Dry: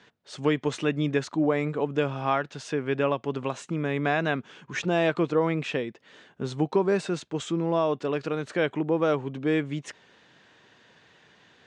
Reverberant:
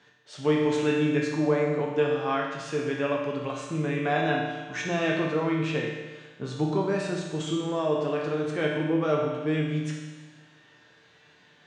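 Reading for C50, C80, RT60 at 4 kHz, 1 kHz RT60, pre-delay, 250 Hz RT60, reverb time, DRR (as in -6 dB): 1.5 dB, 3.5 dB, 1.3 s, 1.3 s, 7 ms, 1.3 s, 1.3 s, -2.5 dB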